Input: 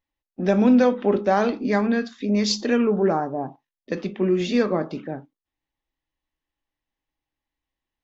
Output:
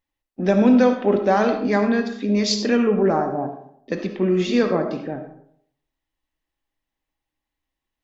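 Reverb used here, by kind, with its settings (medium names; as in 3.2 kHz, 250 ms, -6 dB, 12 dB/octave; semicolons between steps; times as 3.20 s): algorithmic reverb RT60 0.67 s, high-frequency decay 0.5×, pre-delay 30 ms, DRR 7 dB; trim +1.5 dB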